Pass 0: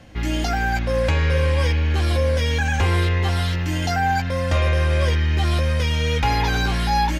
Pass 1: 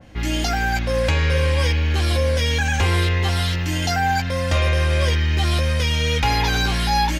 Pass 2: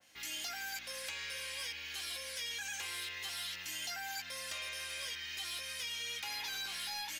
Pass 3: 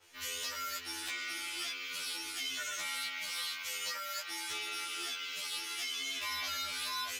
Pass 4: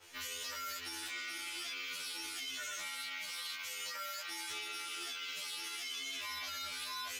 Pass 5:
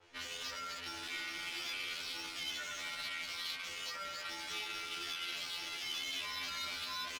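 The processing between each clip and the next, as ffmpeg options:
ffmpeg -i in.wav -af "adynamicequalizer=threshold=0.0112:dfrequency=2200:dqfactor=0.7:tfrequency=2200:tqfactor=0.7:attack=5:release=100:ratio=0.375:range=2.5:mode=boostabove:tftype=highshelf" out.wav
ffmpeg -i in.wav -filter_complex "[0:a]acrossover=split=1500|3400[link_01][link_02][link_03];[link_01]acompressor=threshold=-23dB:ratio=4[link_04];[link_02]acompressor=threshold=-31dB:ratio=4[link_05];[link_03]acompressor=threshold=-40dB:ratio=4[link_06];[link_04][link_05][link_06]amix=inputs=3:normalize=0,aderivative,aeval=exprs='0.075*(cos(1*acos(clip(val(0)/0.075,-1,1)))-cos(1*PI/2))+0.0133*(cos(5*acos(clip(val(0)/0.075,-1,1)))-cos(5*PI/2))':channel_layout=same,volume=-7dB" out.wav
ffmpeg -i in.wav -af "aeval=exprs='val(0)*sin(2*PI*200*n/s)':channel_layout=same,afftfilt=real='re*2*eq(mod(b,4),0)':imag='im*2*eq(mod(b,4),0)':win_size=2048:overlap=0.75,volume=8dB" out.wav
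ffmpeg -i in.wav -af "alimiter=level_in=14.5dB:limit=-24dB:level=0:latency=1:release=79,volume=-14.5dB,volume=4.5dB" out.wav
ffmpeg -i in.wav -filter_complex "[0:a]acrossover=split=3600[link_01][link_02];[link_01]aecho=1:1:264:0.473[link_03];[link_02]aeval=exprs='0.0266*sin(PI/2*2.24*val(0)/0.0266)':channel_layout=same[link_04];[link_03][link_04]amix=inputs=2:normalize=0,adynamicsmooth=sensitivity=7.5:basefreq=1400" out.wav

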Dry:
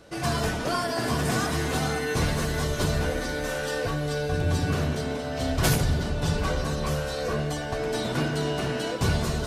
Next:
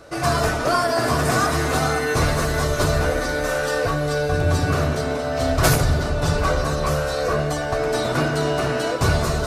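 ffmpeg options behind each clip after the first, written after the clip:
ffmpeg -i in.wav -af "equalizer=frequency=200:width_type=o:width=0.33:gain=-9,equalizer=frequency=630:width_type=o:width=0.33:gain=5,equalizer=frequency=1250:width_type=o:width=0.33:gain=7,equalizer=frequency=3150:width_type=o:width=0.33:gain=-5,volume=5.5dB" out.wav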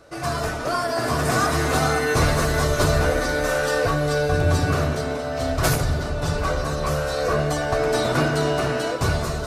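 ffmpeg -i in.wav -af "dynaudnorm=framelen=350:gausssize=7:maxgain=11.5dB,volume=-5.5dB" out.wav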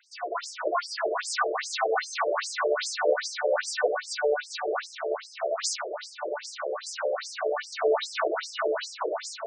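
ffmpeg -i in.wav -af "afftfilt=real='re*between(b*sr/1024,430*pow(6900/430,0.5+0.5*sin(2*PI*2.5*pts/sr))/1.41,430*pow(6900/430,0.5+0.5*sin(2*PI*2.5*pts/sr))*1.41)':imag='im*between(b*sr/1024,430*pow(6900/430,0.5+0.5*sin(2*PI*2.5*pts/sr))/1.41,430*pow(6900/430,0.5+0.5*sin(2*PI*2.5*pts/sr))*1.41)':win_size=1024:overlap=0.75,volume=1.5dB" out.wav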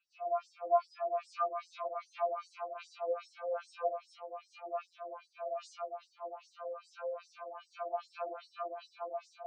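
ffmpeg -i in.wav -filter_complex "[0:a]asplit=3[link_01][link_02][link_03];[link_01]bandpass=frequency=730:width_type=q:width=8,volume=0dB[link_04];[link_02]bandpass=frequency=1090:width_type=q:width=8,volume=-6dB[link_05];[link_03]bandpass=frequency=2440:width_type=q:width=8,volume=-9dB[link_06];[link_04][link_05][link_06]amix=inputs=3:normalize=0,afftfilt=real='re*2.83*eq(mod(b,8),0)':imag='im*2.83*eq(mod(b,8),0)':win_size=2048:overlap=0.75,volume=1dB" out.wav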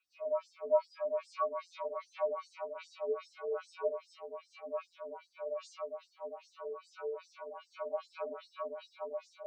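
ffmpeg -i in.wav -af "afreqshift=-80" out.wav

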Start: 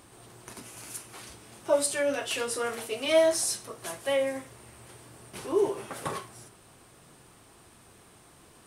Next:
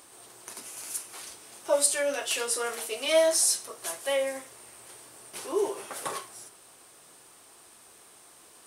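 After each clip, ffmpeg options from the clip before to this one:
ffmpeg -i in.wav -af "bass=frequency=250:gain=-15,treble=frequency=4000:gain=6" out.wav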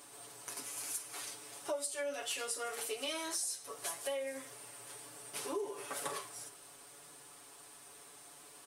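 ffmpeg -i in.wav -af "aecho=1:1:7:0.89,acompressor=threshold=-32dB:ratio=6,volume=-4dB" out.wav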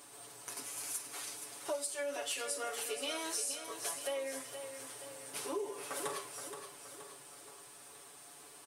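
ffmpeg -i in.wav -af "aecho=1:1:473|946|1419|1892|2365|2838:0.355|0.185|0.0959|0.0499|0.0259|0.0135" out.wav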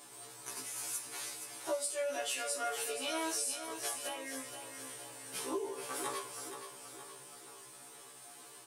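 ffmpeg -i in.wav -af "afftfilt=real='re*1.73*eq(mod(b,3),0)':imag='im*1.73*eq(mod(b,3),0)':win_size=2048:overlap=0.75,volume=3.5dB" out.wav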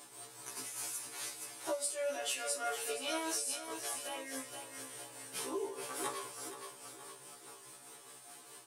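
ffmpeg -i in.wav -af "tremolo=f=4.8:d=0.4,volume=1dB" out.wav

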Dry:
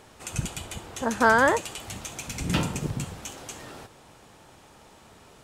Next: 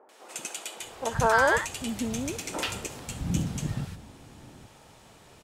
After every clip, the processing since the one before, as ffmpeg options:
ffmpeg -i in.wav -filter_complex "[0:a]acrossover=split=330|1200[link_01][link_02][link_03];[link_03]adelay=90[link_04];[link_01]adelay=800[link_05];[link_05][link_02][link_04]amix=inputs=3:normalize=0" out.wav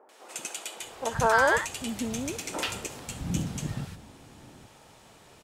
ffmpeg -i in.wav -af "lowshelf=frequency=160:gain=-4" out.wav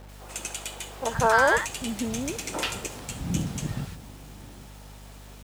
ffmpeg -i in.wav -af "aeval=exprs='val(0)+0.00447*(sin(2*PI*50*n/s)+sin(2*PI*2*50*n/s)/2+sin(2*PI*3*50*n/s)/3+sin(2*PI*4*50*n/s)/4+sin(2*PI*5*50*n/s)/5)':channel_layout=same,acrusher=bits=8:mix=0:aa=0.000001,volume=2dB" out.wav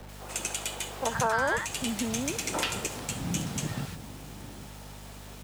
ffmpeg -i in.wav -filter_complex "[0:a]acrossover=split=89|240|610[link_01][link_02][link_03][link_04];[link_01]acompressor=threshold=-52dB:ratio=4[link_05];[link_02]acompressor=threshold=-36dB:ratio=4[link_06];[link_03]acompressor=threshold=-41dB:ratio=4[link_07];[link_04]acompressor=threshold=-29dB:ratio=4[link_08];[link_05][link_06][link_07][link_08]amix=inputs=4:normalize=0,volume=2.5dB" out.wav

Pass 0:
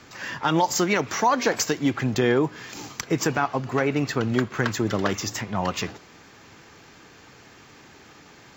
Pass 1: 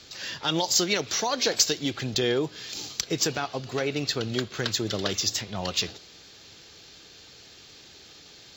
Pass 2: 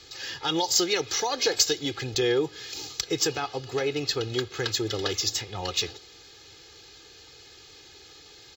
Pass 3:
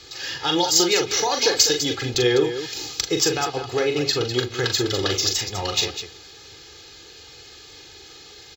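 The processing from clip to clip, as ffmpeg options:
ffmpeg -i in.wav -af "equalizer=frequency=125:width_type=o:width=1:gain=-5,equalizer=frequency=250:width_type=o:width=1:gain=-7,equalizer=frequency=1000:width_type=o:width=1:gain=-10,equalizer=frequency=2000:width_type=o:width=1:gain=-6,equalizer=frequency=4000:width_type=o:width=1:gain=11" out.wav
ffmpeg -i in.wav -af "aecho=1:1:2.4:0.71,volume=-2dB" out.wav
ffmpeg -i in.wav -af "aecho=1:1:40.82|201.2:0.501|0.316,volume=4.5dB" out.wav

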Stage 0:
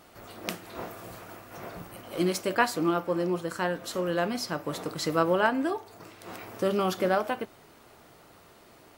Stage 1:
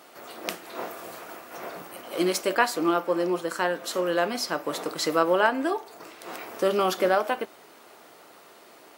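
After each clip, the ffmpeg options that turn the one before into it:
ffmpeg -i in.wav -filter_complex "[0:a]highpass=310,asplit=2[link_01][link_02];[link_02]alimiter=limit=-17dB:level=0:latency=1:release=303,volume=-3dB[link_03];[link_01][link_03]amix=inputs=2:normalize=0" out.wav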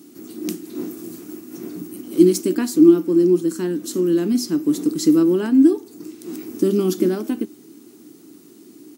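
ffmpeg -i in.wav -af "firequalizer=gain_entry='entry(110,0);entry(300,11);entry(540,-24);entry(6400,-4)':delay=0.05:min_phase=1,volume=9dB" out.wav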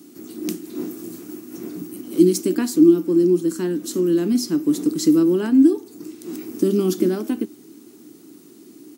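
ffmpeg -i in.wav -filter_complex "[0:a]acrossover=split=400|3000[link_01][link_02][link_03];[link_02]acompressor=threshold=-24dB:ratio=6[link_04];[link_01][link_04][link_03]amix=inputs=3:normalize=0" out.wav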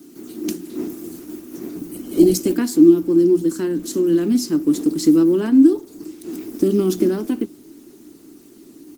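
ffmpeg -i in.wav -af "bandreject=frequency=60:width_type=h:width=6,bandreject=frequency=120:width_type=h:width=6,bandreject=frequency=180:width_type=h:width=6,volume=2dB" -ar 48000 -c:a libopus -b:a 16k out.opus

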